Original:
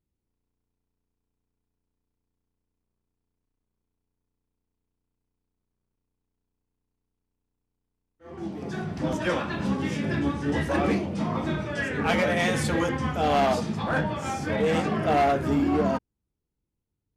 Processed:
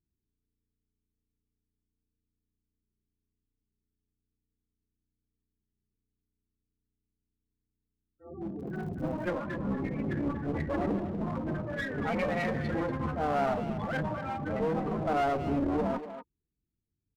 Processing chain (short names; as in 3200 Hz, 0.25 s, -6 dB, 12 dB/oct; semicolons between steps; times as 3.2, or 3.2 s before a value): loudest bins only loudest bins 16; one-sided clip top -32 dBFS; speakerphone echo 0.24 s, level -9 dB; 8.58–9.28 crackle 43/s -> 120/s -44 dBFS; gain -2.5 dB